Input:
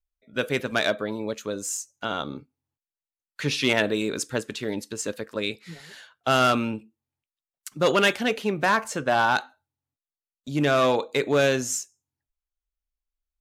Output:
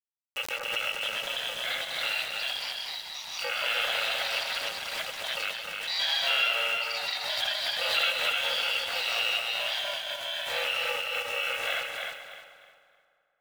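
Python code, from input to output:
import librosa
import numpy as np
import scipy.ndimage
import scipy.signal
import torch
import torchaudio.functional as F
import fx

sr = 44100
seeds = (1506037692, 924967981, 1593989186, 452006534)

p1 = fx.bit_reversed(x, sr, seeds[0], block=128)
p2 = scipy.signal.sosfilt(scipy.signal.cheby1(4, 1.0, [510.0, 3300.0], 'bandpass', fs=sr, output='sos'), p1)
p3 = fx.peak_eq(p2, sr, hz=1000.0, db=-12.0, octaves=0.35)
p4 = fx.over_compress(p3, sr, threshold_db=-39.0, ratio=-1.0)
p5 = p3 + (p4 * 10.0 ** (-1.5 / 20.0))
p6 = np.where(np.abs(p5) >= 10.0 ** (-39.0 / 20.0), p5, 0.0)
p7 = p6 + fx.echo_feedback(p6, sr, ms=305, feedback_pct=27, wet_db=-4, dry=0)
p8 = fx.echo_pitch(p7, sr, ms=723, semitones=3, count=3, db_per_echo=-3.0)
p9 = fx.echo_split(p8, sr, split_hz=1600.0, low_ms=217, high_ms=131, feedback_pct=52, wet_db=-10.0)
y = fx.pre_swell(p9, sr, db_per_s=47.0)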